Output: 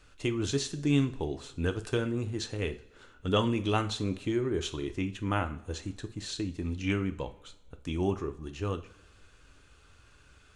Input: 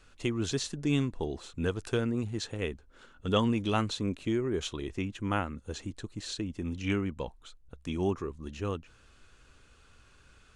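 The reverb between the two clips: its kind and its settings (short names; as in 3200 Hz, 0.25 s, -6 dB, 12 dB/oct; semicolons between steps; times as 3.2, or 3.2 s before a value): two-slope reverb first 0.36 s, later 1.5 s, from -18 dB, DRR 7.5 dB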